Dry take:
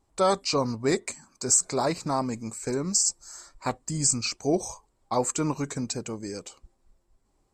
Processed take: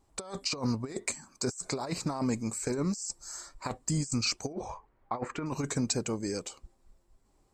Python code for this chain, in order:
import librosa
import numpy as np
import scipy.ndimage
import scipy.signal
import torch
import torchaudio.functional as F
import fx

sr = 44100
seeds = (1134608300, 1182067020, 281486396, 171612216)

y = fx.over_compress(x, sr, threshold_db=-29.0, ratio=-0.5)
y = fx.lowpass_res(y, sr, hz=1900.0, q=1.8, at=(4.53, 5.46))
y = F.gain(torch.from_numpy(y), -2.0).numpy()